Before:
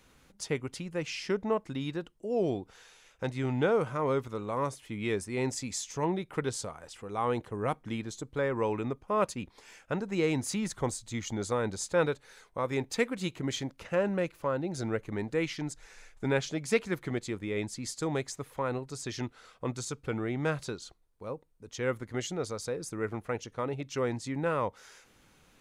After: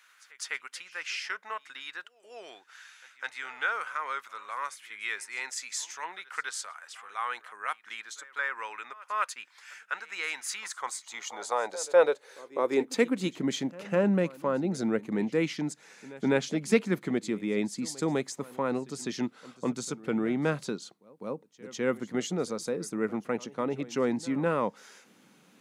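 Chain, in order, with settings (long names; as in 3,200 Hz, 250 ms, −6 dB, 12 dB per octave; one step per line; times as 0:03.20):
high-pass filter sweep 1,500 Hz → 200 Hz, 0:10.56–0:13.48
high-pass filter 120 Hz
echo ahead of the sound 203 ms −20 dB
level +1 dB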